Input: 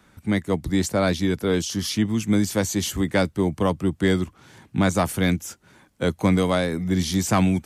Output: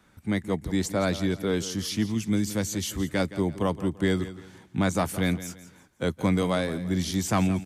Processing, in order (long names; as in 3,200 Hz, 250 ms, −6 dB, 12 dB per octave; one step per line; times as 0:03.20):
0:02.13–0:03.20: dynamic equaliser 830 Hz, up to −5 dB, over −34 dBFS, Q 0.77
repeating echo 169 ms, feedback 33%, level −14.5 dB
level −4.5 dB